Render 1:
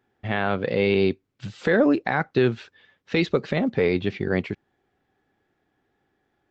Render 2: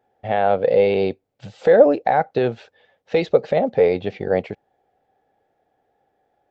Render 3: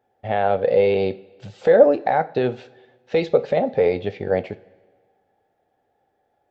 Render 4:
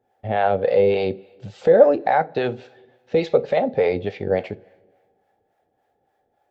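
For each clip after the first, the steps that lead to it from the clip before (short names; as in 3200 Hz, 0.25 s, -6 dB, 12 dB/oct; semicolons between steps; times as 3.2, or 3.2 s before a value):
band shelf 620 Hz +13.5 dB 1.1 oct; gain -3 dB
two-slope reverb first 0.31 s, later 1.5 s, from -16 dB, DRR 11.5 dB; gain -1.5 dB
harmonic tremolo 3.5 Hz, depth 70%, crossover 540 Hz; gain +3.5 dB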